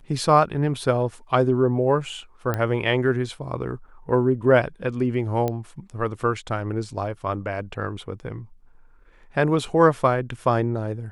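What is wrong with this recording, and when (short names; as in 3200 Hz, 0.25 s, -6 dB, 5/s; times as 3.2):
2.54 pop -12 dBFS
5.48 pop -13 dBFS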